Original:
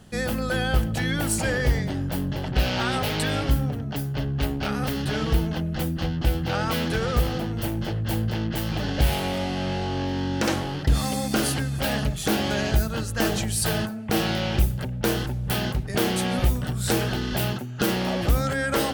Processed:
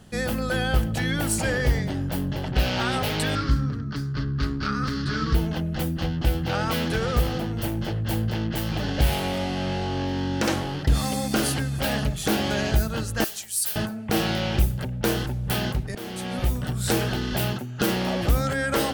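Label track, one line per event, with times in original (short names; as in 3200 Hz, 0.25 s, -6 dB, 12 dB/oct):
3.350000	5.350000	EQ curve 330 Hz 0 dB, 760 Hz -17 dB, 1200 Hz +7 dB, 2900 Hz -8 dB, 4600 Hz +5 dB, 14000 Hz -22 dB
13.240000	13.760000	pre-emphasis coefficient 0.97
15.950000	16.700000	fade in, from -16.5 dB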